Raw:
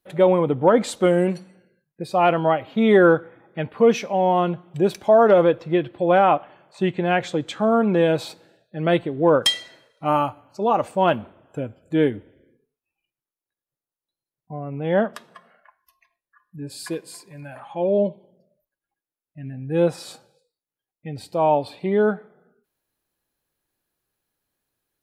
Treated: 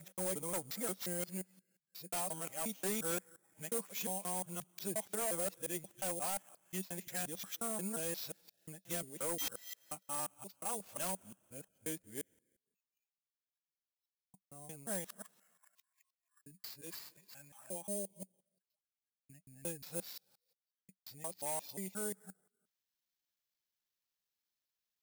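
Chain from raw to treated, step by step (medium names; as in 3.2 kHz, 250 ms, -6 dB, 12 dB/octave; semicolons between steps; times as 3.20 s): time reversed locally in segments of 177 ms; peaking EQ 190 Hz +8 dB 0.32 oct; sample-rate reducer 9.3 kHz, jitter 0%; pre-emphasis filter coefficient 0.9; wavefolder -20 dBFS; trim -6.5 dB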